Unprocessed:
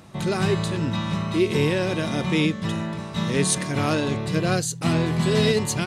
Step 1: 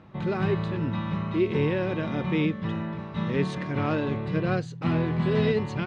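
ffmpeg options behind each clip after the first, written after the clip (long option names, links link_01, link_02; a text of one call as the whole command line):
ffmpeg -i in.wav -af "lowpass=3000,aemphasis=mode=reproduction:type=50fm,bandreject=frequency=680:width=12,volume=-3.5dB" out.wav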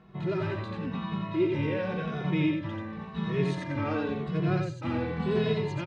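ffmpeg -i in.wav -filter_complex "[0:a]asplit=2[link_01][link_02];[link_02]aecho=0:1:88|196:0.668|0.106[link_03];[link_01][link_03]amix=inputs=2:normalize=0,asplit=2[link_04][link_05];[link_05]adelay=2.3,afreqshift=-0.93[link_06];[link_04][link_06]amix=inputs=2:normalize=1,volume=-1.5dB" out.wav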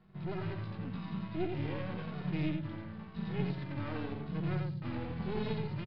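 ffmpeg -i in.wav -filter_complex "[0:a]acrossover=split=250[link_01][link_02];[link_01]aecho=1:1:211:0.531[link_03];[link_02]aeval=exprs='max(val(0),0)':channel_layout=same[link_04];[link_03][link_04]amix=inputs=2:normalize=0,aresample=11025,aresample=44100,volume=-6dB" out.wav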